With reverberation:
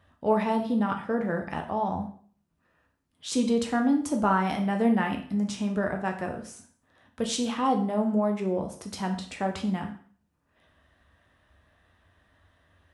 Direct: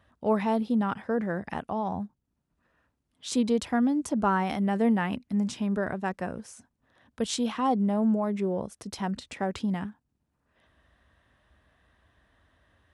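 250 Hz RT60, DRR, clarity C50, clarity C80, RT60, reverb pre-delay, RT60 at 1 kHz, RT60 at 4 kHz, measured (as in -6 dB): 0.45 s, 3.0 dB, 9.0 dB, 13.0 dB, 0.50 s, 5 ms, 0.50 s, 0.45 s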